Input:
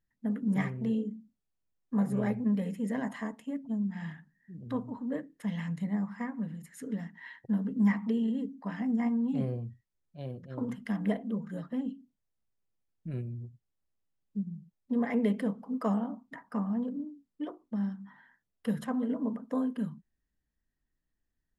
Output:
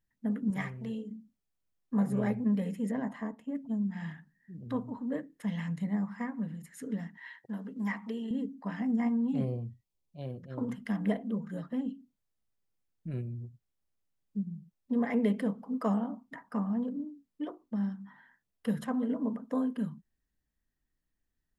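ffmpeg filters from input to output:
ffmpeg -i in.wav -filter_complex "[0:a]asettb=1/sr,asplit=3[link_01][link_02][link_03];[link_01]atrim=end=0.504[link_04];[link_02]atrim=start=0.5:end=1.11,asetpts=PTS-STARTPTS,afade=type=in:duration=0.004:curve=qsin,afade=type=out:start_time=0.606:duration=0.004:curve=qsin,equalizer=frequency=270:width_type=o:width=2.3:gain=-8[link_05];[link_03]atrim=start=1.106[link_06];[link_04][link_05]acrossfade=duration=0.004:curve1=hsin:curve2=qsin[link_07];[link_07][link_06]acrossfade=duration=0.004:curve1=qsin:curve2=hsin,asettb=1/sr,asplit=3[link_08][link_09][link_10];[link_08]atrim=end=2.914[link_11];[link_09]atrim=start=2.91:end=3.55,asetpts=PTS-STARTPTS,afade=type=in:duration=0.004:curve=qsin,afade=type=out:start_time=0.636:duration=0.004:curve=qsin,highshelf=frequency=2100:gain=-11.5[link_12];[link_10]atrim=start=3.546[link_13];[link_11][link_12]acrossfade=duration=0.004:curve1=hsin:curve2=qsin[link_14];[link_14][link_13]acrossfade=duration=0.004:curve1=qsin:curve2=hsin,asettb=1/sr,asplit=3[link_15][link_16][link_17];[link_15]atrim=end=7.174[link_18];[link_16]atrim=start=7.17:end=8.31,asetpts=PTS-STARTPTS,afade=type=in:duration=0.004:curve=qsin,afade=type=out:start_time=1.136:duration=0.004:curve=qsin,highpass=frequency=550:poles=1[link_19];[link_17]atrim=start=8.306[link_20];[link_18][link_19]acrossfade=duration=0.004:curve1=hsin:curve2=qsin[link_21];[link_21][link_20]acrossfade=duration=0.004:curve1=qsin:curve2=hsin,asettb=1/sr,asplit=3[link_22][link_23][link_24];[link_22]atrim=end=9.444[link_25];[link_23]atrim=start=9.44:end=10.22,asetpts=PTS-STARTPTS,afade=type=in:duration=0.004:curve=qsin,afade=type=out:start_time=0.776:duration=0.004:curve=qsin,asuperstop=centerf=1600:order=4:qfactor=1.6[link_26];[link_24]atrim=start=10.216[link_27];[link_25][link_26]acrossfade=duration=0.004:curve1=hsin:curve2=qsin[link_28];[link_28][link_27]acrossfade=duration=0.004:curve1=qsin:curve2=hsin" out.wav

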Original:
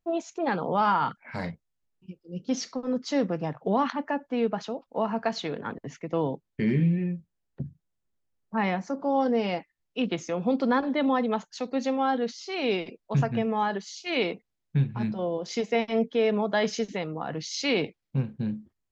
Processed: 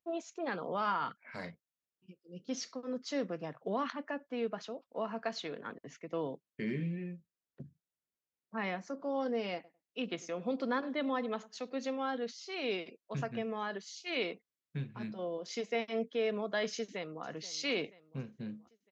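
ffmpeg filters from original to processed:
ffmpeg -i in.wav -filter_complex "[0:a]asettb=1/sr,asplit=3[link_01][link_02][link_03];[link_01]atrim=end=9.544[link_04];[link_02]atrim=start=9.54:end=11.88,asetpts=PTS-STARTPTS,afade=type=in:duration=0.004:curve=qsin,afade=type=out:start_time=2.336:duration=0.004:curve=qsin,asplit=2[link_05][link_06];[link_06]adelay=100,lowpass=frequency=1700:poles=1,volume=-19dB,asplit=2[link_07][link_08];[link_08]adelay=100,lowpass=frequency=1700:poles=1,volume=0.16[link_09];[link_05][link_07][link_09]amix=inputs=3:normalize=0,atrim=end_sample=103194[link_10];[link_03]atrim=start=11.876[link_11];[link_04][link_10]acrossfade=duration=0.004:curve1=hsin:curve2=qsin[link_12];[link_12][link_11]acrossfade=duration=0.004:curve1=qsin:curve2=hsin,asplit=2[link_13][link_14];[link_14]afade=type=in:start_time=16.75:duration=0.01,afade=type=out:start_time=17.24:duration=0.01,aecho=0:1:480|960|1440|1920|2400:0.158489|0.0871691|0.047943|0.0263687|0.0145028[link_15];[link_13][link_15]amix=inputs=2:normalize=0,highpass=frequency=340:poles=1,equalizer=frequency=850:width_type=o:width=0.27:gain=-8.5,volume=-6.5dB" out.wav

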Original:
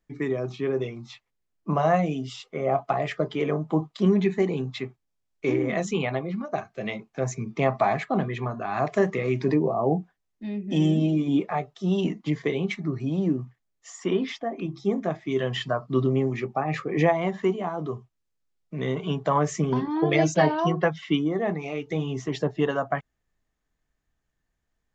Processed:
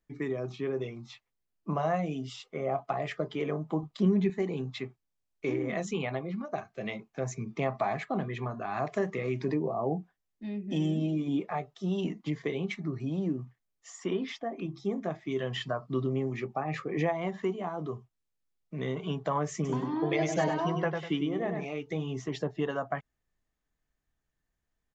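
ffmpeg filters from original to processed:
ffmpeg -i in.wav -filter_complex "[0:a]asettb=1/sr,asplit=3[link_01][link_02][link_03];[link_01]atrim=end=3.834[link_04];[link_02]atrim=start=3.83:end=4.3,asetpts=PTS-STARTPTS,afade=type=in:duration=0.004:curve=qsin,afade=type=out:start_time=0.466:duration=0.004:curve=qsin,lowshelf=frequency=300:gain=8.5[link_05];[link_03]atrim=start=4.296[link_06];[link_04][link_05]acrossfade=duration=0.004:curve1=hsin:curve2=qsin[link_07];[link_07][link_06]acrossfade=duration=0.004:curve1=qsin:curve2=hsin,asplit=3[link_08][link_09][link_10];[link_08]afade=type=out:start_time=19.64:duration=0.02[link_11];[link_09]aecho=1:1:99|198|297:0.501|0.13|0.0339,afade=type=in:start_time=19.64:duration=0.02,afade=type=out:start_time=21.64:duration=0.02[link_12];[link_10]afade=type=in:start_time=21.64:duration=0.02[link_13];[link_11][link_12][link_13]amix=inputs=3:normalize=0,acompressor=threshold=-26dB:ratio=1.5,volume=-4.5dB" out.wav

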